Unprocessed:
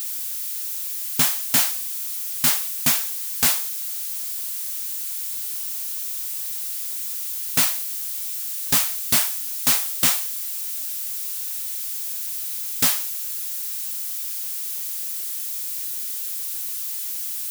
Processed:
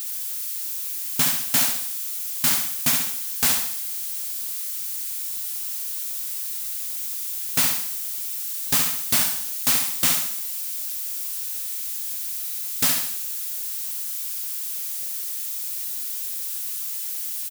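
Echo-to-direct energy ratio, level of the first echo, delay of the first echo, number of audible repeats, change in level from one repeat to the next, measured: -4.5 dB, -5.5 dB, 68 ms, 5, -6.5 dB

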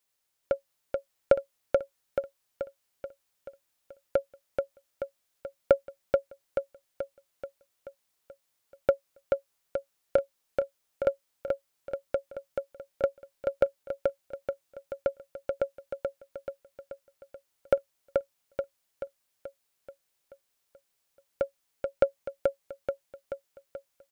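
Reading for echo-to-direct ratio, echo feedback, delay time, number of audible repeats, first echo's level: -2.0 dB, 55%, 0.432 s, 7, -3.5 dB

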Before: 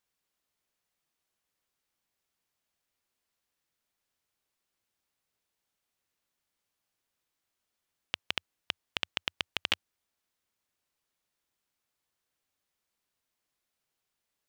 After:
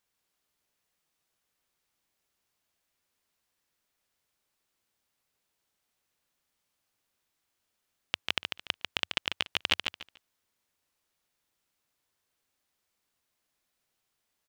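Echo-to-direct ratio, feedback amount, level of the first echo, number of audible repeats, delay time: -5.5 dB, 22%, -5.5 dB, 3, 0.145 s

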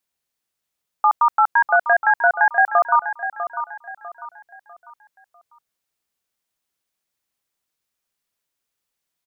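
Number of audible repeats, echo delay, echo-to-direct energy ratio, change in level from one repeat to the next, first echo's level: 3, 0.648 s, -10.0 dB, -9.0 dB, -10.5 dB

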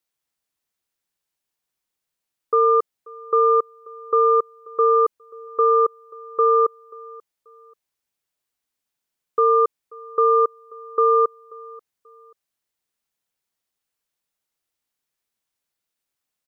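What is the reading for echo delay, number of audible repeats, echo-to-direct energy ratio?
0.535 s, 2, -22.5 dB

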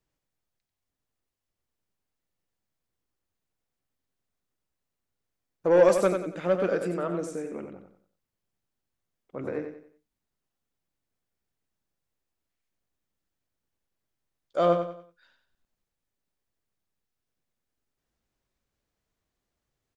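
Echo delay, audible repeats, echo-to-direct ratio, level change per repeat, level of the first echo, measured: 92 ms, 4, -6.5 dB, -9.0 dB, -7.0 dB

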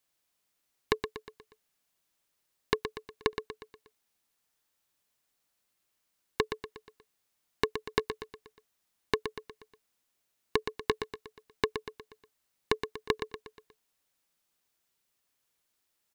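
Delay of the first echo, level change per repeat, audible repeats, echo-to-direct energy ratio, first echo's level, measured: 0.12 s, -6.5 dB, 5, -7.5 dB, -8.5 dB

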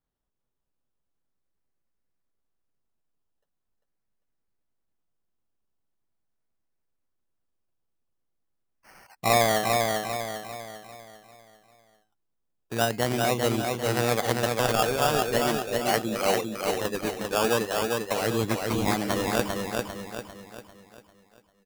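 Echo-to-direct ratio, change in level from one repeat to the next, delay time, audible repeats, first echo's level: -2.5 dB, -7.0 dB, 0.397 s, 5, -3.5 dB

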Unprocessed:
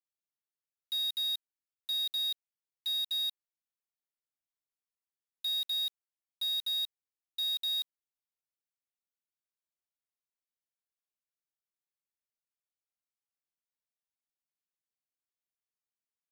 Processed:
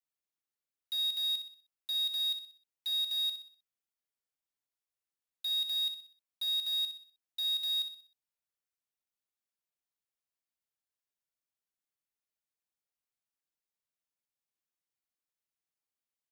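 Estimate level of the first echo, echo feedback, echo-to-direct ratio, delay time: -9.0 dB, 42%, -8.0 dB, 62 ms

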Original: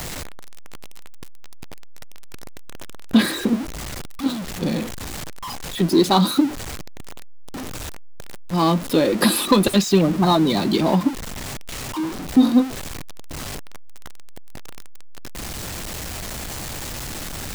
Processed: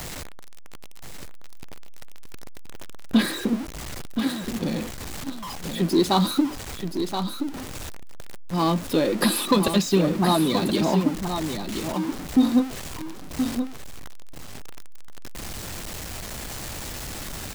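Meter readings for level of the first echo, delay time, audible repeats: -7.5 dB, 1.025 s, 1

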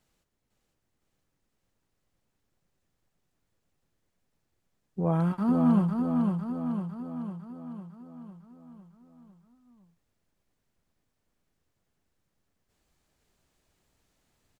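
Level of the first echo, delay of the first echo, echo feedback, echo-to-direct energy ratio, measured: -4.0 dB, 0.503 s, 57%, -2.5 dB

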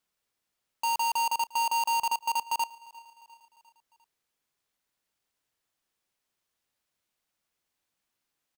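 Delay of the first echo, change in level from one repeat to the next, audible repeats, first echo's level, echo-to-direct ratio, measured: 0.351 s, -4.5 dB, 3, -23.0 dB, -21.5 dB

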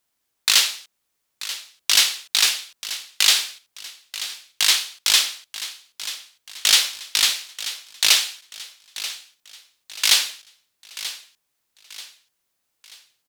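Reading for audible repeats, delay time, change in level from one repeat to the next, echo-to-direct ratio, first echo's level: 3, 0.935 s, -8.0 dB, -13.0 dB, -14.0 dB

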